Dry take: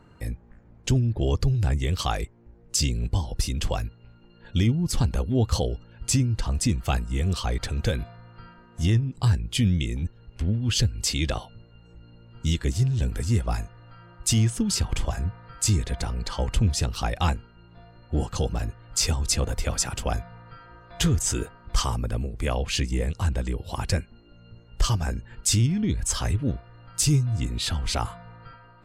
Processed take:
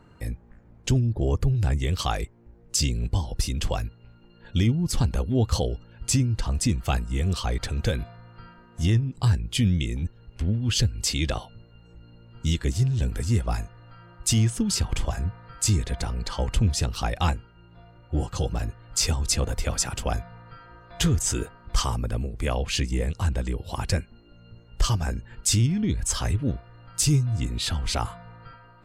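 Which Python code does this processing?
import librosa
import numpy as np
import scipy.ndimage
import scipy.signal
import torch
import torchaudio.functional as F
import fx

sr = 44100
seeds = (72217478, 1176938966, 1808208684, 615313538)

y = fx.peak_eq(x, sr, hz=fx.line((1.0, 1600.0), (1.56, 6800.0)), db=-12.5, octaves=0.84, at=(1.0, 1.56), fade=0.02)
y = fx.notch_comb(y, sr, f0_hz=220.0, at=(17.31, 18.51))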